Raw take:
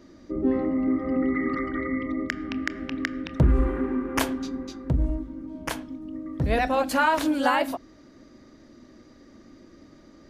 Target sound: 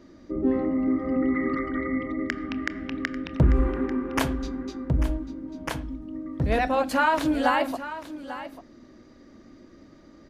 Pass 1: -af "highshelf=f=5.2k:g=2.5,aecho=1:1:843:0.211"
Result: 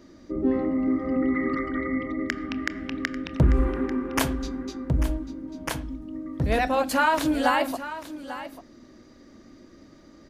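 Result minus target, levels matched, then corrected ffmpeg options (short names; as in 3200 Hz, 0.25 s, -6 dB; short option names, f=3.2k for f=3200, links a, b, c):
8000 Hz band +5.5 dB
-af "highshelf=f=5.2k:g=-5.5,aecho=1:1:843:0.211"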